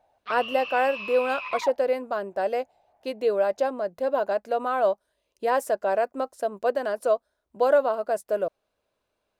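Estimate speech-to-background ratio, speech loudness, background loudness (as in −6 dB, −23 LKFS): 8.0 dB, −26.0 LKFS, −34.0 LKFS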